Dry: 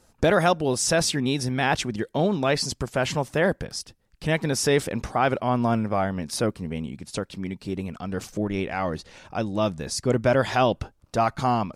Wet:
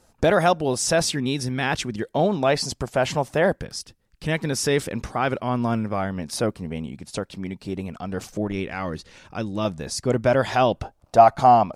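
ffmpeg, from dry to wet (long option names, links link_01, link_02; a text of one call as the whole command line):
ffmpeg -i in.wav -af "asetnsamples=nb_out_samples=441:pad=0,asendcmd='1.14 equalizer g -4;2.02 equalizer g 5.5;3.55 equalizer g -3;6.19 equalizer g 3.5;8.52 equalizer g -5.5;9.65 equalizer g 2.5;10.82 equalizer g 12',equalizer=frequency=710:width_type=o:width=0.76:gain=3" out.wav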